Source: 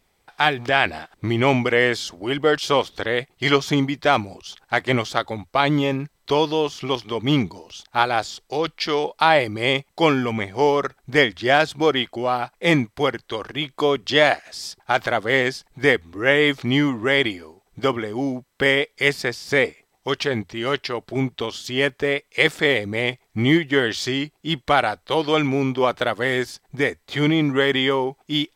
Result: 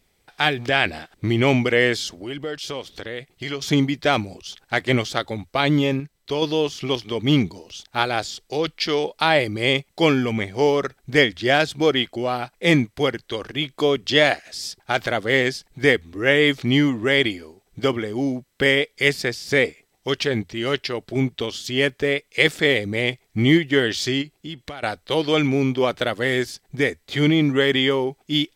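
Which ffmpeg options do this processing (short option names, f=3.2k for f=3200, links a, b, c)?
-filter_complex "[0:a]asettb=1/sr,asplit=3[a][b][c];[a]atrim=end=2.134[d];[b]atrim=start=2.13:end=3.62,asetpts=PTS-STARTPTS,afade=t=in:d=0.004:c=qsin,afade=t=out:st=1.486:d=0.004:c=qsin,acompressor=threshold=-34dB:ratio=2:attack=3.2:release=140:knee=1:detection=peak[e];[c]atrim=start=3.616[f];[d][e]acrossfade=d=0.004:c1=hsin:c2=qsin[g];[g][f]acrossfade=d=0.004:c1=qsin:c2=hsin,asplit=3[h][i][j];[h]afade=t=out:st=24.21:d=0.02[k];[i]acompressor=threshold=-32dB:ratio=4:attack=3.2:release=140:knee=1:detection=peak,afade=t=in:st=24.21:d=0.02,afade=t=out:st=24.82:d=0.02[l];[j]afade=t=in:st=24.82:d=0.02[m];[k][l][m]amix=inputs=3:normalize=0,asplit=3[n][o][p];[n]atrim=end=6.002[q];[o]atrim=start=5.998:end=6.422,asetpts=PTS-STARTPTS,volume=-5dB[r];[p]atrim=start=6.418[s];[q][r]acrossfade=d=0.004:c1=hsin:c2=hsin[t];[t][s]acrossfade=d=0.004:c1=hsin:c2=hsin,equalizer=f=990:w=1.1:g=-7.5,volume=2dB"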